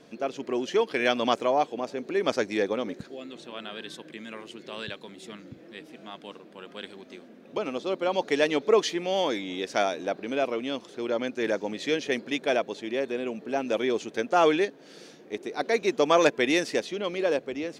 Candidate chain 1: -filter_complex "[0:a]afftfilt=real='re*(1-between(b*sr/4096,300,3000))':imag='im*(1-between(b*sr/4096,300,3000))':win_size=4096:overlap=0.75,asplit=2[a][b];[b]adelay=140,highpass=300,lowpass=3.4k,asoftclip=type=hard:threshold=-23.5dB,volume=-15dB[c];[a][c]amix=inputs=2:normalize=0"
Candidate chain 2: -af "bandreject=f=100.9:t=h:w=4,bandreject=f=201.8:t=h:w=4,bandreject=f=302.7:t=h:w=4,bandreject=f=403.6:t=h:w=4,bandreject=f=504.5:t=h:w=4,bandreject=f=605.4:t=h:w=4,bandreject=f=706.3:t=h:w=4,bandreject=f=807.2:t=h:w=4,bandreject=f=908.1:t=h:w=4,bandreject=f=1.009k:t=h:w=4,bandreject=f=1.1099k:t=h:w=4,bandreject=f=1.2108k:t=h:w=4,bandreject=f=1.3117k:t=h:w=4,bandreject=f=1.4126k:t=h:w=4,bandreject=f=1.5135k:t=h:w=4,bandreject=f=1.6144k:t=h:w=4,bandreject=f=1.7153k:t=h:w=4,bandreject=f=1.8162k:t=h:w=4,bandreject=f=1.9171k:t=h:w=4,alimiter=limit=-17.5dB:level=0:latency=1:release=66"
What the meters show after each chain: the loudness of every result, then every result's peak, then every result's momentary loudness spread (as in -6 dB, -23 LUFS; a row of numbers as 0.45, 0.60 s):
-37.0, -30.5 LUFS; -14.5, -17.5 dBFS; 15, 16 LU